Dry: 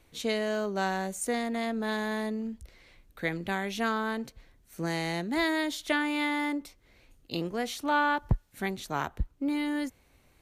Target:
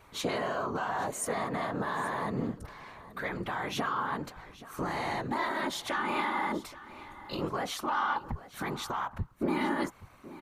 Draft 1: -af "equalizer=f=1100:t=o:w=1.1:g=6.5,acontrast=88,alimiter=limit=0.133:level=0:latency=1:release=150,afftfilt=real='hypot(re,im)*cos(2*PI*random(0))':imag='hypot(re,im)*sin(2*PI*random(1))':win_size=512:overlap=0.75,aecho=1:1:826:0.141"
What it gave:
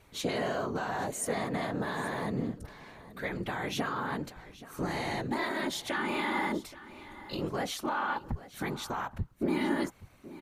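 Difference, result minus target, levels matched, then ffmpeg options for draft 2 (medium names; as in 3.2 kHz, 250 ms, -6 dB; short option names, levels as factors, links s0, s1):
1 kHz band -2.5 dB
-af "equalizer=f=1100:t=o:w=1.1:g=16.5,acontrast=88,alimiter=limit=0.133:level=0:latency=1:release=150,afftfilt=real='hypot(re,im)*cos(2*PI*random(0))':imag='hypot(re,im)*sin(2*PI*random(1))':win_size=512:overlap=0.75,aecho=1:1:826:0.141"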